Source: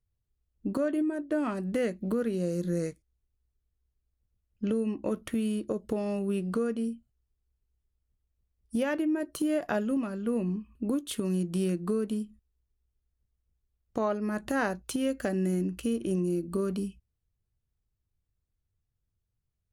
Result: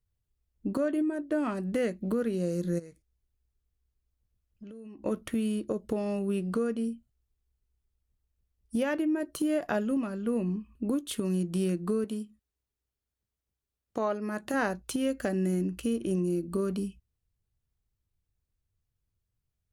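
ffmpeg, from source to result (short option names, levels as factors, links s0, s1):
-filter_complex "[0:a]asplit=3[s0][s1][s2];[s0]afade=t=out:st=2.78:d=0.02[s3];[s1]acompressor=threshold=0.00708:ratio=8:attack=3.2:release=140:knee=1:detection=peak,afade=t=in:st=2.78:d=0.02,afade=t=out:st=5.04:d=0.02[s4];[s2]afade=t=in:st=5.04:d=0.02[s5];[s3][s4][s5]amix=inputs=3:normalize=0,asettb=1/sr,asplit=3[s6][s7][s8];[s6]atrim=end=12.044[s9];[s7]atrim=start=12.04:end=14.54,asetpts=PTS-STARTPTS,afade=t=in:d=0.004:c=qsin,afade=t=out:st=2.496:d=0.004:c=qsin,highpass=f=230:p=1[s10];[s8]atrim=start=14.536[s11];[s9][s10]acrossfade=d=0.004:c1=hsin:c2=qsin[s12];[s12][s11]acrossfade=d=0.004:c1=qsin:c2=hsin"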